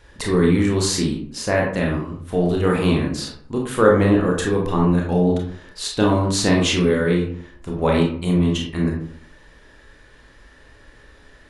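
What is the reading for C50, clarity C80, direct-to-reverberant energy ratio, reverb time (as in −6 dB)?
4.5 dB, 8.5 dB, −1.0 dB, 0.60 s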